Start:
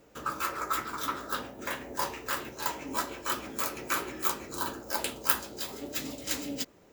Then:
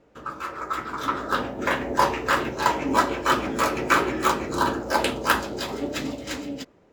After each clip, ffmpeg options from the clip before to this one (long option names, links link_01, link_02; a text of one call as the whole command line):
ffmpeg -i in.wav -af "aemphasis=mode=reproduction:type=75fm,dynaudnorm=framelen=260:gausssize=9:maxgain=13.5dB" out.wav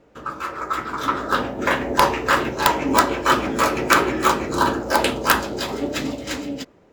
ffmpeg -i in.wav -af "aeval=exprs='(mod(2.11*val(0)+1,2)-1)/2.11':channel_layout=same,volume=4dB" out.wav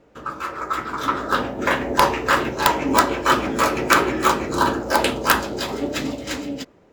ffmpeg -i in.wav -af anull out.wav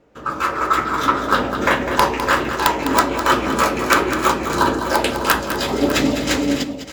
ffmpeg -i in.wav -filter_complex "[0:a]dynaudnorm=framelen=110:gausssize=5:maxgain=10.5dB,asplit=2[link_01][link_02];[link_02]aecho=0:1:204|602:0.335|0.224[link_03];[link_01][link_03]amix=inputs=2:normalize=0,volume=-1.5dB" out.wav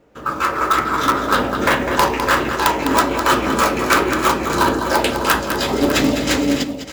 ffmpeg -i in.wav -filter_complex "[0:a]asplit=2[link_01][link_02];[link_02]aeval=exprs='(mod(2.66*val(0)+1,2)-1)/2.66':channel_layout=same,volume=-9dB[link_03];[link_01][link_03]amix=inputs=2:normalize=0,acrusher=bits=7:mode=log:mix=0:aa=0.000001,volume=-1dB" out.wav